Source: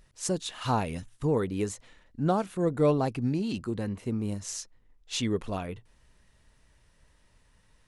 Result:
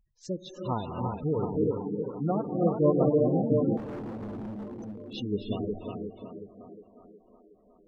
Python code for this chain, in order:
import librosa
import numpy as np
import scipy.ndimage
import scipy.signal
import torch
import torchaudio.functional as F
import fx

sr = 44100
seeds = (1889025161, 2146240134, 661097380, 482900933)

p1 = scipy.signal.sosfilt(scipy.signal.butter(4, 6000.0, 'lowpass', fs=sr, output='sos'), x)
p2 = p1 + fx.echo_tape(p1, sr, ms=364, feedback_pct=74, wet_db=-3.5, lp_hz=3500.0, drive_db=9.0, wow_cents=32, dry=0)
p3 = fx.rev_gated(p2, sr, seeds[0], gate_ms=360, shape='rising', drr_db=1.0)
p4 = fx.spec_gate(p3, sr, threshold_db=-15, keep='strong')
p5 = fx.notch(p4, sr, hz=810.0, q=12.0)
p6 = fx.overload_stage(p5, sr, gain_db=29.0, at=(3.77, 5.13))
y = fx.upward_expand(p6, sr, threshold_db=-43.0, expansion=1.5)